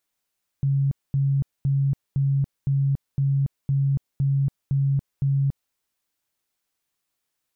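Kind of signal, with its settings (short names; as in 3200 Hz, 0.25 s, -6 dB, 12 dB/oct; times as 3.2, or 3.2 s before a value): tone bursts 138 Hz, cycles 39, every 0.51 s, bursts 10, -18 dBFS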